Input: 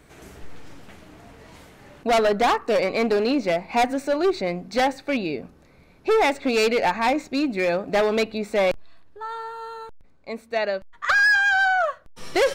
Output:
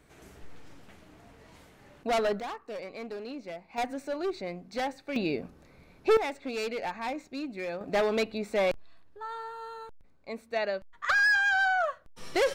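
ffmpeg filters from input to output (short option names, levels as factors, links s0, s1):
-af "asetnsamples=n=441:p=0,asendcmd='2.4 volume volume -18dB;3.78 volume volume -11dB;5.16 volume volume -2.5dB;6.17 volume volume -13dB;7.81 volume volume -6dB',volume=0.398"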